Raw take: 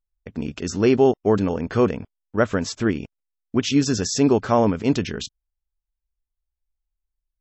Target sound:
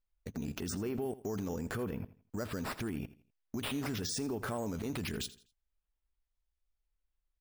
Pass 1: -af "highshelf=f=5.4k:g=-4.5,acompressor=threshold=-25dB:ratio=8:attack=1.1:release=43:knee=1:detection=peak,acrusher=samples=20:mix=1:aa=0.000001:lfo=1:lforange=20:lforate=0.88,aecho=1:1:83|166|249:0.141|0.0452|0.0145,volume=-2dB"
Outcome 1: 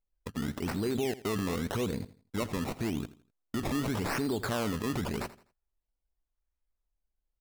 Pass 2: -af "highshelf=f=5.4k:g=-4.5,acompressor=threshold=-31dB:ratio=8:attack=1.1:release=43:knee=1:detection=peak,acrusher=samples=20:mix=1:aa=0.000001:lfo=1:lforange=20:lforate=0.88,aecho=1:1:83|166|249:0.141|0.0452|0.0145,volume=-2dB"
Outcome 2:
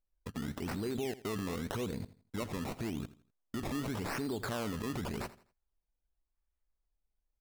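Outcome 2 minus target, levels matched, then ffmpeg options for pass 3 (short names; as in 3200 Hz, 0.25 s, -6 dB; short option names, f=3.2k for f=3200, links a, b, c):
decimation with a swept rate: distortion +6 dB
-af "highshelf=f=5.4k:g=-4.5,acompressor=threshold=-31dB:ratio=8:attack=1.1:release=43:knee=1:detection=peak,acrusher=samples=5:mix=1:aa=0.000001:lfo=1:lforange=5:lforate=0.88,aecho=1:1:83|166|249:0.141|0.0452|0.0145,volume=-2dB"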